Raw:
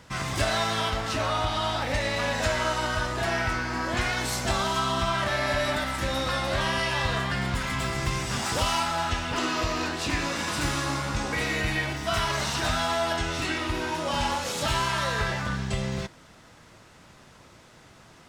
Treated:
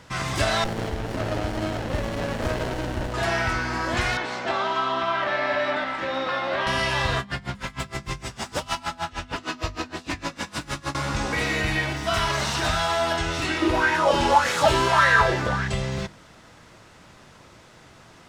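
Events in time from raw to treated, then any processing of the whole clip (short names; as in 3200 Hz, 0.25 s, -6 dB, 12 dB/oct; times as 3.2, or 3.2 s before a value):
0.64–3.14 running maximum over 33 samples
4.17–6.67 BPF 270–2900 Hz
7.19–10.95 dB-linear tremolo 6.5 Hz, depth 27 dB
13.62–15.68 LFO bell 1.7 Hz 320–1900 Hz +15 dB
whole clip: high shelf 8900 Hz -4.5 dB; notches 50/100/150/200/250 Hz; gain +3 dB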